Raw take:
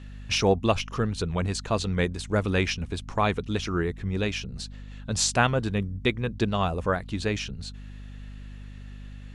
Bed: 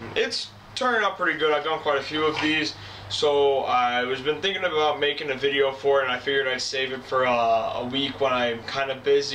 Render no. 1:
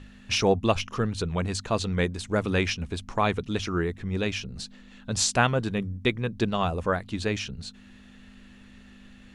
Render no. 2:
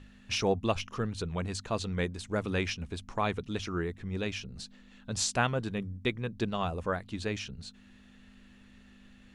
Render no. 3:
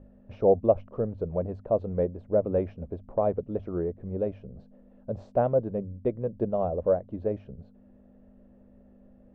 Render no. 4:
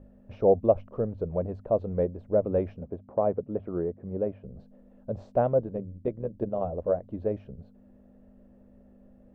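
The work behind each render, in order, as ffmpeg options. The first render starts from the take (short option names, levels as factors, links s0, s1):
-af "bandreject=f=50:t=h:w=6,bandreject=f=100:t=h:w=6,bandreject=f=150:t=h:w=6"
-af "volume=0.501"
-af "lowpass=f=580:t=q:w=4.9"
-filter_complex "[0:a]asettb=1/sr,asplit=3[s0][s1][s2];[s0]atrim=end=2.804[s3];[s1]atrim=start=2.8:end=4.44,asetpts=PTS-STARTPTS,afade=t=in:d=0.004:c=qsin,afade=t=out:st=1.636:d=0.004:c=qsin,highpass=100,lowpass=2100[s4];[s2]atrim=start=4.436[s5];[s3][s4]acrossfade=d=0.004:c1=hsin:c2=qsin[s6];[s6][s5]acrossfade=d=0.004:c1=qsin:c2=hsin,asettb=1/sr,asplit=3[s7][s8][s9];[s7]atrim=end=5.614[s10];[s8]atrim=start=5.61:end=7.03,asetpts=PTS-STARTPTS,afade=t=in:d=0.004:c=qsin,afade=t=out:st=1.416:d=0.004:c=qsin,tremolo=f=81:d=0.571[s11];[s9]atrim=start=7.026[s12];[s10][s11]acrossfade=d=0.004:c1=hsin:c2=qsin[s13];[s13][s12]acrossfade=d=0.004:c1=qsin:c2=hsin"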